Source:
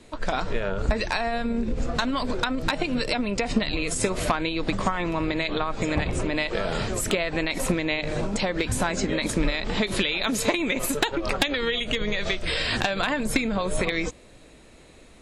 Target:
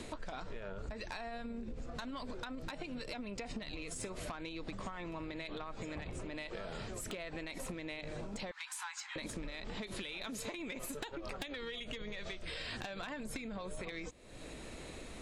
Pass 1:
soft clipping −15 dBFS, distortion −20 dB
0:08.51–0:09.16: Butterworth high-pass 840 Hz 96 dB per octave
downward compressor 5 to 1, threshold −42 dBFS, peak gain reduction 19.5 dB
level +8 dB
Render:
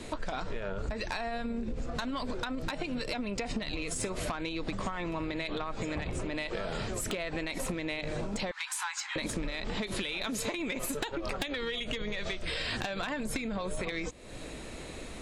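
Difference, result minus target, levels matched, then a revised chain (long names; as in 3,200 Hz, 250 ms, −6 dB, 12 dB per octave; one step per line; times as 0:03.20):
downward compressor: peak gain reduction −8.5 dB
soft clipping −15 dBFS, distortion −20 dB
0:08.51–0:09.16: Butterworth high-pass 840 Hz 96 dB per octave
downward compressor 5 to 1, threshold −52.5 dBFS, peak gain reduction 28 dB
level +8 dB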